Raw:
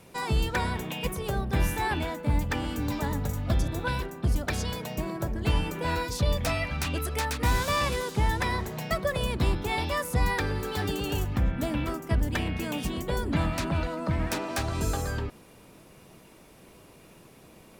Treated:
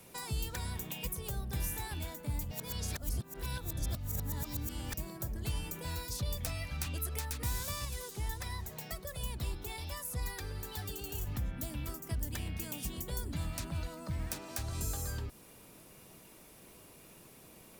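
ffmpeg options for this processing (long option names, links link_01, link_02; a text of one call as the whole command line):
ffmpeg -i in.wav -filter_complex "[0:a]asettb=1/sr,asplit=3[link_01][link_02][link_03];[link_01]atrim=end=7.854[link_04];[link_02]atrim=start=7.85:end=11.27,asetpts=PTS-STARTPTS,afade=type=in:duration=0.004:curve=qsin,afade=type=out:start_time=3.416:duration=0.004:curve=qsin,flanger=delay=1:depth=1.7:regen=49:speed=1.4:shape=sinusoidal[link_05];[link_03]atrim=start=11.266[link_06];[link_04][link_05]acrossfade=duration=0.004:curve1=hsin:curve2=qsin[link_07];[link_07][link_06]acrossfade=duration=0.004:curve1=qsin:curve2=hsin,asplit=3[link_08][link_09][link_10];[link_08]atrim=end=2.512[link_11];[link_09]atrim=start=2.508:end=4.942,asetpts=PTS-STARTPTS,areverse[link_12];[link_10]atrim=start=4.938[link_13];[link_11][link_12]acrossfade=duration=0.004:curve1=hsin:curve2=hsin[link_14];[link_14][link_13]acrossfade=duration=0.004:curve1=hsin:curve2=hsin,highshelf=frequency=4000:gain=-6,acrossover=split=140|4300[link_15][link_16][link_17];[link_15]acompressor=threshold=-28dB:ratio=4[link_18];[link_16]acompressor=threshold=-41dB:ratio=4[link_19];[link_17]acompressor=threshold=-46dB:ratio=4[link_20];[link_18][link_19][link_20]amix=inputs=3:normalize=0,aemphasis=mode=production:type=75kf,volume=-5.5dB" out.wav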